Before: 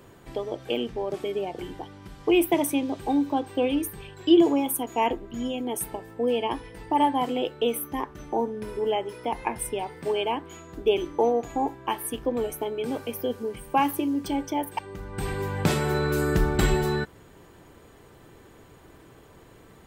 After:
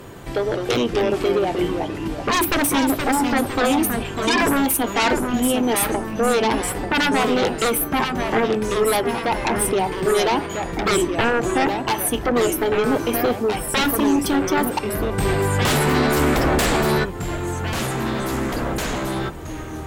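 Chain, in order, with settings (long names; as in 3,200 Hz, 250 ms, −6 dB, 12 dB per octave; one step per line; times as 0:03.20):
sine wavefolder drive 16 dB, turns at −7.5 dBFS
delay with pitch and tempo change per echo 162 ms, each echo −2 semitones, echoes 3, each echo −6 dB
level −8 dB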